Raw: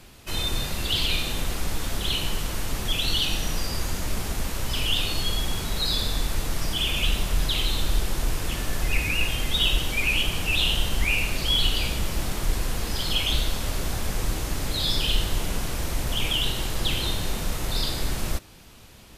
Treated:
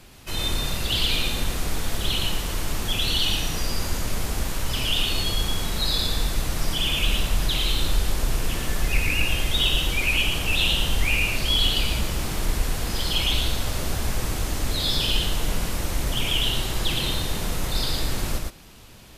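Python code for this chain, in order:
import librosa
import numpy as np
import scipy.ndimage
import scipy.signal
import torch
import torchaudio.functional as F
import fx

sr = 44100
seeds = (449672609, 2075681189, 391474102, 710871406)

y = x + 10.0 ** (-3.5 / 20.0) * np.pad(x, (int(114 * sr / 1000.0), 0))[:len(x)]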